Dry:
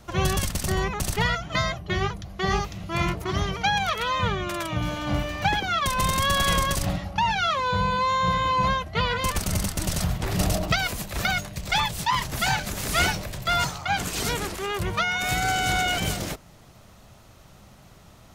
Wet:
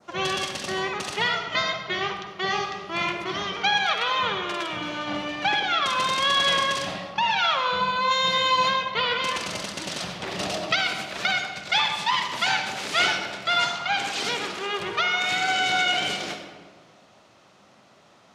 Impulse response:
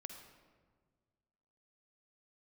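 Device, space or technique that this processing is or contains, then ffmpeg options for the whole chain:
supermarket ceiling speaker: -filter_complex "[0:a]asplit=3[s0][s1][s2];[s0]afade=t=out:st=8.1:d=0.02[s3];[s1]aemphasis=mode=production:type=75kf,afade=t=in:st=8.1:d=0.02,afade=t=out:st=8.69:d=0.02[s4];[s2]afade=t=in:st=8.69:d=0.02[s5];[s3][s4][s5]amix=inputs=3:normalize=0,adynamicequalizer=threshold=0.0112:dfrequency=3200:dqfactor=0.97:tfrequency=3200:tqfactor=0.97:attack=5:release=100:ratio=0.375:range=3:mode=boostabove:tftype=bell,highpass=290,lowpass=5700[s6];[1:a]atrim=start_sample=2205[s7];[s6][s7]afir=irnorm=-1:irlink=0,volume=1.58"

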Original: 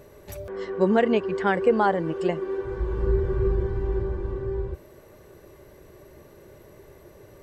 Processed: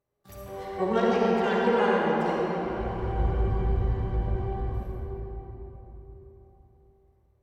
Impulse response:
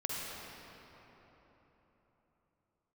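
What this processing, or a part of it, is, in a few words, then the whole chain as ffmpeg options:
shimmer-style reverb: -filter_complex "[0:a]asettb=1/sr,asplit=3[s0][s1][s2];[s0]atrim=end=2.454[s3];[s1]atrim=start=2.45:end=4.12,asetpts=PTS-STARTPTS,afade=t=in:d=0.004:c=qsin,afade=t=out:st=1.666:d=0.004:c=qsin,equalizer=f=360:t=o:w=0.47:g=-5[s4];[s2]atrim=start=4.116[s5];[s3][s4]acrossfade=d=0.004:c1=hsin:c2=qsin[s6];[s6][s5]acrossfade=d=0.004:c1=qsin:c2=hsin,agate=range=0.0447:threshold=0.00708:ratio=16:detection=peak,asplit=2[s7][s8];[s8]asetrate=88200,aresample=44100,atempo=0.5,volume=0.447[s9];[s7][s9]amix=inputs=2:normalize=0[s10];[1:a]atrim=start_sample=2205[s11];[s10][s11]afir=irnorm=-1:irlink=0,volume=0.447"

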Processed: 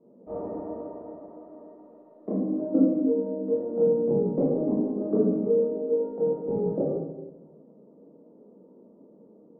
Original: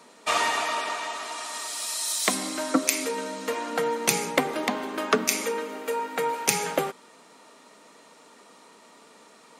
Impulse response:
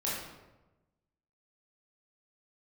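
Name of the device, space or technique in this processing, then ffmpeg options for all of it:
next room: -filter_complex "[0:a]lowpass=f=460:w=0.5412,lowpass=f=460:w=1.3066[s0];[1:a]atrim=start_sample=2205[s1];[s0][s1]afir=irnorm=-1:irlink=0,asettb=1/sr,asplit=3[s2][s3][s4];[s2]atrim=end=5.384[s5];[s3]atrim=start=5.38:end=5.92,asetpts=PTS-STARTPTS,afade=t=in:d=0.004:c=qsin,afade=t=out:st=0.536:d=0.004:c=qsin,asplit=2[s6][s7];[s7]adelay=37,volume=0.562[s8];[s6][s8]amix=inputs=2:normalize=0,atrim=end_sample=23814[s9];[s4]atrim=start=5.916[s10];[s5][s9]acrossfade=d=0.004:c1=hsin:c2=qsin[s11];[s11][s10]acrossfade=d=0.004:c1=qsin:c2=hsin"

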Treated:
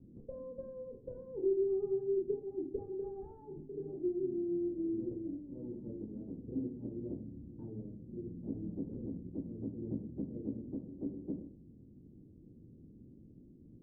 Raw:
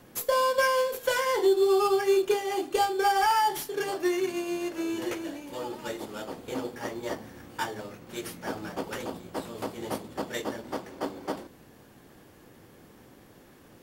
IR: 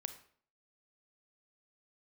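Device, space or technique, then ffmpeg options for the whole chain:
next room: -filter_complex "[0:a]lowpass=f=300:w=0.5412,lowpass=f=300:w=1.3066[s0];[1:a]atrim=start_sample=2205[s1];[s0][s1]afir=irnorm=-1:irlink=0,volume=1.41"

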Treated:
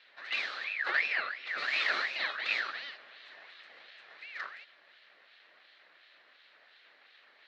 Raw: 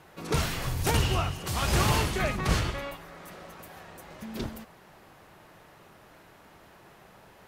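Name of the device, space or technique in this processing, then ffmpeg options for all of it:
voice changer toy: -filter_complex "[0:a]asettb=1/sr,asplit=3[s0][s1][s2];[s0]atrim=end=0.644[s3];[s1]atrim=start=0.64:end=1.58,asetpts=PTS-STARTPTS,afade=t=in:d=0.004:c=qsin,afade=t=out:st=0.936:d=0.004:c=qsin,aemphasis=mode=reproduction:type=75fm[s4];[s2]atrim=start=1.576[s5];[s3][s4]acrossfade=d=0.004:c1=hsin:c2=qsin[s6];[s6][s5]acrossfade=d=0.004:c1=qsin:c2=hsin,aeval=exprs='val(0)*sin(2*PI*1900*n/s+1900*0.35/2.8*sin(2*PI*2.8*n/s))':c=same,highpass=430,equalizer=f=600:t=q:w=4:g=4,equalizer=f=930:t=q:w=4:g=-5,equalizer=f=1800:t=q:w=4:g=7,equalizer=f=4100:t=q:w=4:g=9,lowpass=f=4500:w=0.5412,lowpass=f=4500:w=1.3066,volume=0.473"

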